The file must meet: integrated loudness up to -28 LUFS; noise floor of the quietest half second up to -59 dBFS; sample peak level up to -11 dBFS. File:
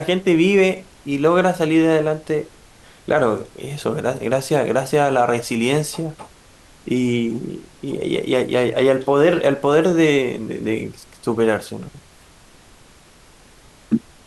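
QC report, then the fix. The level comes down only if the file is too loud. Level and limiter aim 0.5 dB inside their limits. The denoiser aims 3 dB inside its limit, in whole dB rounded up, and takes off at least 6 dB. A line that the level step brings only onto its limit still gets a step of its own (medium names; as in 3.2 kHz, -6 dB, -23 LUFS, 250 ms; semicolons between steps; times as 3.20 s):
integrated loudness -19.0 LUFS: fail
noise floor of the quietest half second -48 dBFS: fail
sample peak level -5.0 dBFS: fail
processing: noise reduction 6 dB, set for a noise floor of -48 dBFS; trim -9.5 dB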